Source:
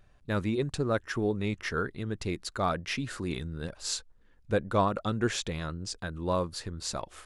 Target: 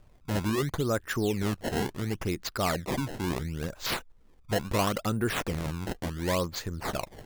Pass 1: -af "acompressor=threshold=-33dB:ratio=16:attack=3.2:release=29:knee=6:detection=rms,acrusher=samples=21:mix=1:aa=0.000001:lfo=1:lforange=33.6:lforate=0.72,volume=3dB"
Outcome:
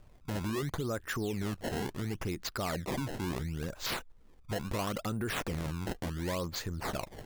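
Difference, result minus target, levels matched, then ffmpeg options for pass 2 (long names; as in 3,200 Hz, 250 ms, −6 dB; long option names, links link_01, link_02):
downward compressor: peak gain reduction +8.5 dB
-af "acompressor=threshold=-24dB:ratio=16:attack=3.2:release=29:knee=6:detection=rms,acrusher=samples=21:mix=1:aa=0.000001:lfo=1:lforange=33.6:lforate=0.72,volume=3dB"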